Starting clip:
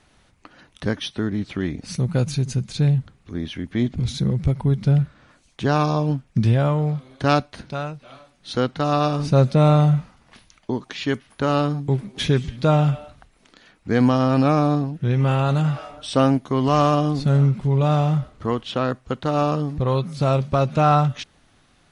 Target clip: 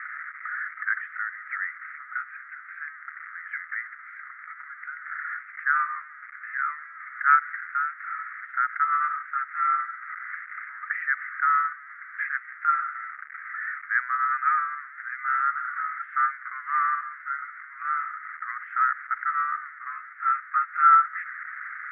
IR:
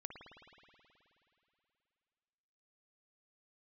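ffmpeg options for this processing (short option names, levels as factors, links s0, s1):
-af "aeval=exprs='val(0)+0.5*0.0335*sgn(val(0))':c=same,asuperpass=centerf=1600:order=12:qfactor=1.9,volume=2.37"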